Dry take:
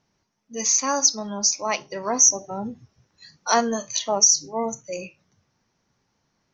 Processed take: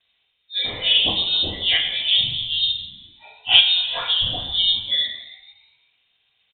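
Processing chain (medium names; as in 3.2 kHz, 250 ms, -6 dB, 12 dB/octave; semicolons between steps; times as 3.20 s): frequency axis rescaled in octaves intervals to 89%; frequency-shifting echo 135 ms, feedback 58%, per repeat -69 Hz, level -13 dB; reverberation RT60 0.60 s, pre-delay 3 ms, DRR -4 dB; 3.60–4.68 s: compression 2:1, threshold -12 dBFS, peak gain reduction 4.5 dB; frequency inversion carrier 3.9 kHz; trim -6 dB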